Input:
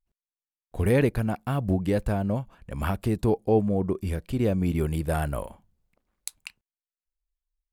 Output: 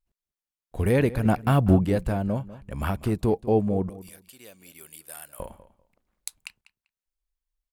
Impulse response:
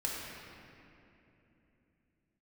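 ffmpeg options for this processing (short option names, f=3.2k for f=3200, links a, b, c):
-filter_complex "[0:a]asettb=1/sr,asplit=3[a][b][c];[a]atrim=end=1.254[d];[b]atrim=start=1.25:end=1.85,asetpts=PTS-STARTPTS,afade=t=in:d=0.004:c=qsin,afade=t=out:st=0.596:d=0.004:c=qsin,acontrast=83[e];[c]atrim=start=1.846[f];[d][e]acrossfade=d=0.004:c1=hsin:c2=qsin[g];[g][f]acrossfade=d=0.004:c1=qsin:c2=hsin,asettb=1/sr,asplit=3[h][i][j];[h]atrim=end=3.894[k];[i]atrim=start=3.89:end=5.4,asetpts=PTS-STARTPTS,afade=t=in:d=0.004:c=qsin,afade=t=out:st=1.506:d=0.004:c=qsin,aderivative[l];[j]atrim=start=5.396[m];[k][l]acrossfade=d=0.004:c1=hsin:c2=qsin[n];[n][m]acrossfade=d=0.004:c1=qsin:c2=hsin,asplit=2[o][p];[p]adelay=196,lowpass=f=4.2k:p=1,volume=-16.5dB,asplit=2[q][r];[r]adelay=196,lowpass=f=4.2k:p=1,volume=0.19[s];[o][q][s]amix=inputs=3:normalize=0"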